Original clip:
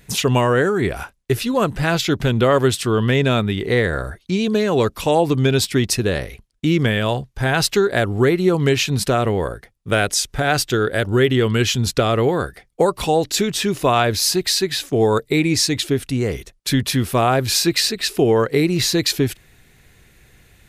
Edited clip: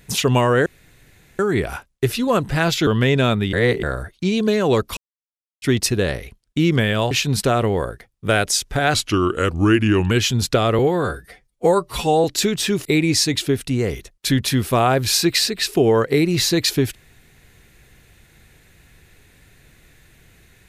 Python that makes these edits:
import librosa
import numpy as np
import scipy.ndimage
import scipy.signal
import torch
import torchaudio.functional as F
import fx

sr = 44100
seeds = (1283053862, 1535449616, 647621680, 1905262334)

y = fx.edit(x, sr, fx.insert_room_tone(at_s=0.66, length_s=0.73),
    fx.cut(start_s=2.14, length_s=0.8),
    fx.reverse_span(start_s=3.6, length_s=0.3),
    fx.silence(start_s=5.04, length_s=0.65),
    fx.cut(start_s=7.18, length_s=1.56),
    fx.speed_span(start_s=10.57, length_s=0.98, speed=0.84),
    fx.stretch_span(start_s=12.23, length_s=0.97, factor=1.5),
    fx.cut(start_s=13.81, length_s=1.46), tone=tone)